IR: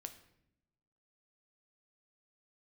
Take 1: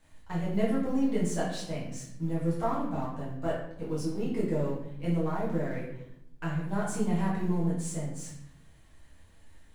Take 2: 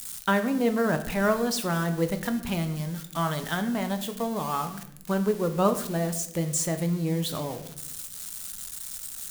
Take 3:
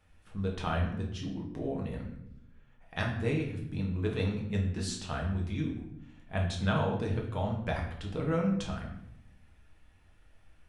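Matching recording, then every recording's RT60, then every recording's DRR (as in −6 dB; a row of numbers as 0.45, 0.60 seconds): 2; 0.75, 0.80, 0.75 seconds; −7.5, 7.5, −1.0 decibels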